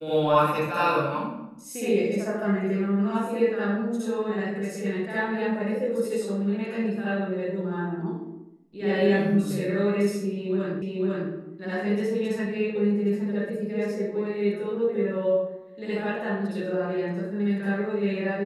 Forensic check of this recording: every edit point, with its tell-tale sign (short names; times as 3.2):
10.82 repeat of the last 0.5 s